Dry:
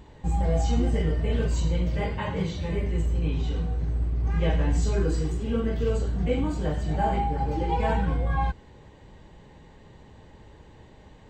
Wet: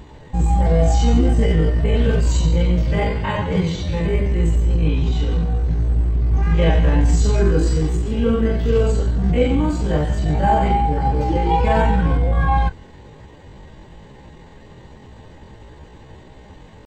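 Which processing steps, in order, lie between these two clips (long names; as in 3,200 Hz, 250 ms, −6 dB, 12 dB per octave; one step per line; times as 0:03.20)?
tempo change 0.67×
level +8.5 dB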